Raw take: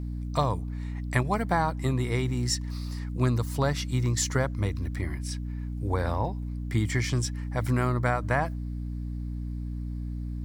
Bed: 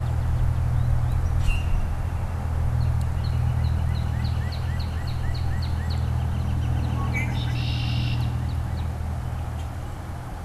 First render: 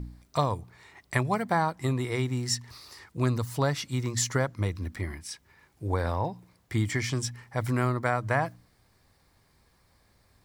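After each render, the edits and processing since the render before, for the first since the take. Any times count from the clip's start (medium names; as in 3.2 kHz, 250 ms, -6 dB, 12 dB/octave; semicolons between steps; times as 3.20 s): de-hum 60 Hz, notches 5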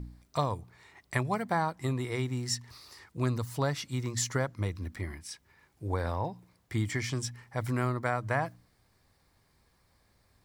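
trim -3.5 dB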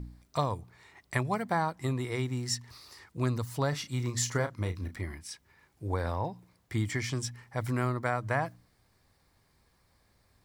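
3.69–4.95 s: doubling 33 ms -9 dB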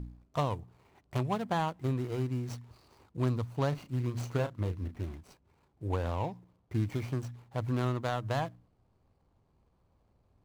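median filter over 25 samples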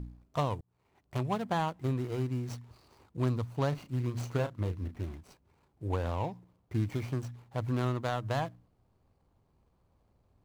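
0.61–1.29 s: fade in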